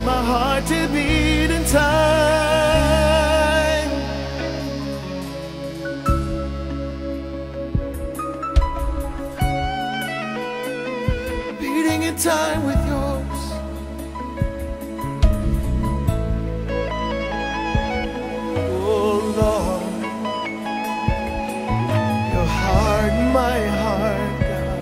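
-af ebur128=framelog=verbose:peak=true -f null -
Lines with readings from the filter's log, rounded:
Integrated loudness:
  I:         -21.4 LUFS
  Threshold: -31.3 LUFS
Loudness range:
  LRA:         8.2 LU
  Threshold: -41.8 LUFS
  LRA low:   -25.4 LUFS
  LRA high:  -17.3 LUFS
True peak:
  Peak:       -2.6 dBFS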